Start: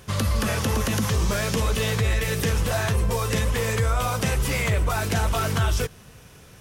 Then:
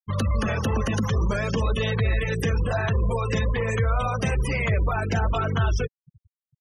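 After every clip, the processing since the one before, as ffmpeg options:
-af "afftfilt=real='re*gte(hypot(re,im),0.0501)':imag='im*gte(hypot(re,im),0.0501)':win_size=1024:overlap=0.75"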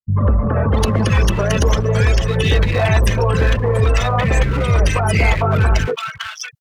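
-filter_complex "[0:a]asplit=2[a][b];[b]alimiter=limit=-21dB:level=0:latency=1:release=195,volume=1.5dB[c];[a][c]amix=inputs=2:normalize=0,asoftclip=type=hard:threshold=-16dB,acrossover=split=240|1400[d][e][f];[e]adelay=80[g];[f]adelay=640[h];[d][g][h]amix=inputs=3:normalize=0,volume=6dB"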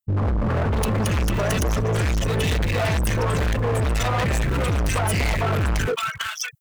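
-af "aexciter=amount=3.3:drive=3.5:freq=7k,asoftclip=type=hard:threshold=-19.5dB"

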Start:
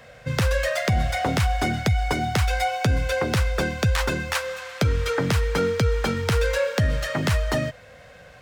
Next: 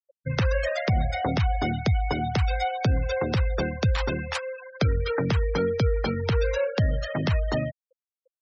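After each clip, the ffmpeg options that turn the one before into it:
-af "afftfilt=real='re*gte(hypot(re,im),0.0501)':imag='im*gte(hypot(re,im),0.0501)':win_size=1024:overlap=0.75,adynamicequalizer=threshold=0.00794:dfrequency=1600:dqfactor=1.2:tfrequency=1600:tqfactor=1.2:attack=5:release=100:ratio=0.375:range=2.5:mode=cutabove:tftype=bell,volume=-1.5dB"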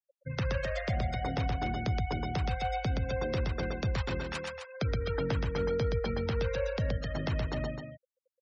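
-af "aecho=1:1:122.4|259.5:0.708|0.398,volume=-9dB"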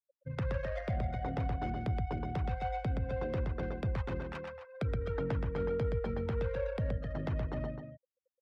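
-af "adynamicsmooth=sensitivity=2:basefreq=1.3k,volume=-2.5dB"

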